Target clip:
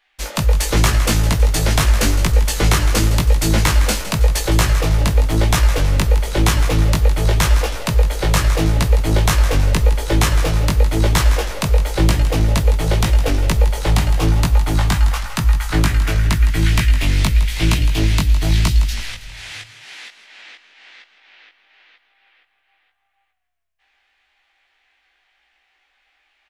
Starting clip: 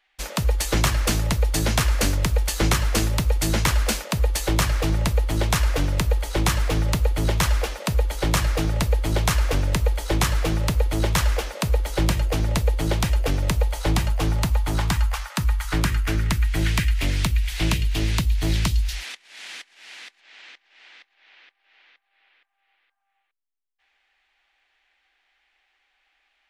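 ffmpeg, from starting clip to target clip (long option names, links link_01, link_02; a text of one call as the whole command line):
ffmpeg -i in.wav -filter_complex "[0:a]asplit=7[link_01][link_02][link_03][link_04][link_05][link_06][link_07];[link_02]adelay=161,afreqshift=-32,volume=-12dB[link_08];[link_03]adelay=322,afreqshift=-64,volume=-17.4dB[link_09];[link_04]adelay=483,afreqshift=-96,volume=-22.7dB[link_10];[link_05]adelay=644,afreqshift=-128,volume=-28.1dB[link_11];[link_06]adelay=805,afreqshift=-160,volume=-33.4dB[link_12];[link_07]adelay=966,afreqshift=-192,volume=-38.8dB[link_13];[link_01][link_08][link_09][link_10][link_11][link_12][link_13]amix=inputs=7:normalize=0,flanger=delay=17.5:depth=2.6:speed=0.9,volume=7.5dB" out.wav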